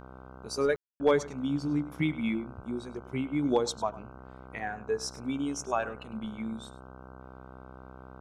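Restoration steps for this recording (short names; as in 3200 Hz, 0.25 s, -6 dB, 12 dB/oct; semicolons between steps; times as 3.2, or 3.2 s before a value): clip repair -14.5 dBFS; de-hum 64.2 Hz, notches 24; room tone fill 0.76–1; inverse comb 0.102 s -17.5 dB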